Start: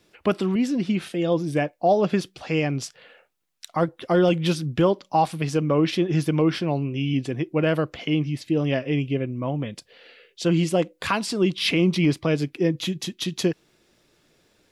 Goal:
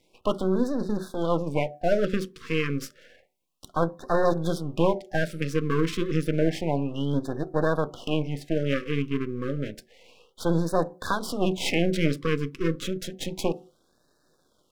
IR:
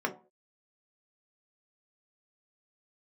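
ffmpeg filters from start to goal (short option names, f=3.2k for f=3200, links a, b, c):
-filter_complex "[0:a]aeval=exprs='max(val(0),0)':c=same,asplit=2[a][b];[1:a]atrim=start_sample=2205,highshelf=f=7.5k:g=-10[c];[b][c]afir=irnorm=-1:irlink=0,volume=-13dB[d];[a][d]amix=inputs=2:normalize=0,afftfilt=real='re*(1-between(b*sr/1024,700*pow(2600/700,0.5+0.5*sin(2*PI*0.3*pts/sr))/1.41,700*pow(2600/700,0.5+0.5*sin(2*PI*0.3*pts/sr))*1.41))':imag='im*(1-between(b*sr/1024,700*pow(2600/700,0.5+0.5*sin(2*PI*0.3*pts/sr))/1.41,700*pow(2600/700,0.5+0.5*sin(2*PI*0.3*pts/sr))*1.41))':win_size=1024:overlap=0.75,volume=-1.5dB"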